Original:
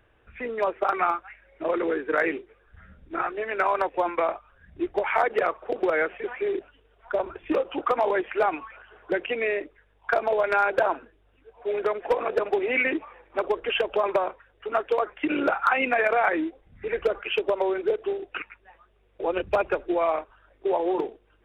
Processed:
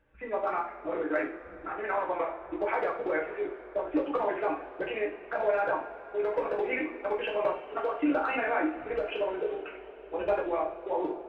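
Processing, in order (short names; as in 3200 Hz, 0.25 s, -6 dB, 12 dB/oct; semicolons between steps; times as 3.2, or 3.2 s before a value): high shelf 2900 Hz -9.5 dB; tempo 1.9×; two-slope reverb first 0.39 s, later 4.8 s, from -21 dB, DRR -3 dB; gain -8 dB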